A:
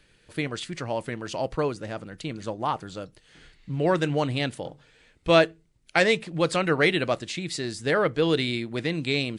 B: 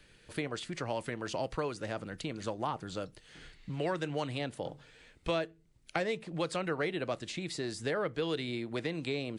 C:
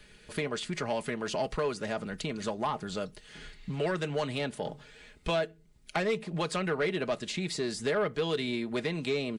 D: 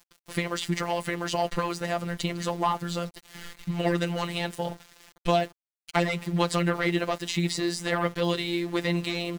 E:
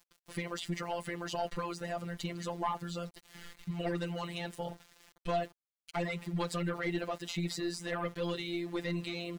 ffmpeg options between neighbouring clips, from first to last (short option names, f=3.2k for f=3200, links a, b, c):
-filter_complex "[0:a]acrossover=split=430|1100[a][b][c];[a]acompressor=threshold=-39dB:ratio=4[d];[b]acompressor=threshold=-37dB:ratio=4[e];[c]acompressor=threshold=-41dB:ratio=4[f];[d][e][f]amix=inputs=3:normalize=0"
-af "aecho=1:1:4.8:0.49,asoftclip=type=tanh:threshold=-25dB,volume=4dB"
-af "aeval=exprs='val(0)*gte(abs(val(0)),0.00473)':c=same,afftfilt=real='hypot(re,im)*cos(PI*b)':imag='0':win_size=1024:overlap=0.75,volume=8.5dB"
-af "aeval=exprs='(tanh(4.47*val(0)+0.45)-tanh(0.45))/4.47':c=same,volume=-5.5dB"